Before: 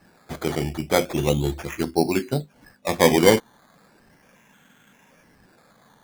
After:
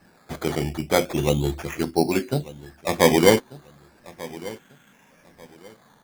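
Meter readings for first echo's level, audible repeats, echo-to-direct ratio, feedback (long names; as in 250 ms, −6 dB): −19.0 dB, 2, −18.5 dB, 26%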